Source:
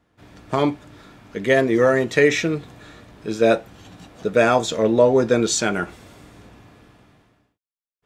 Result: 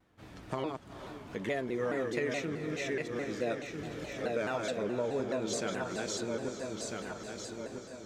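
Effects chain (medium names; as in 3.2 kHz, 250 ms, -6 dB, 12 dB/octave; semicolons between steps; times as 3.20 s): backward echo that repeats 649 ms, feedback 41%, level -4 dB; compression 2.5:1, threshold -34 dBFS, peak gain reduction 16 dB; echo that smears into a reverb 450 ms, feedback 64%, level -11 dB; vibrato with a chosen wave saw down 4.7 Hz, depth 160 cents; trim -4 dB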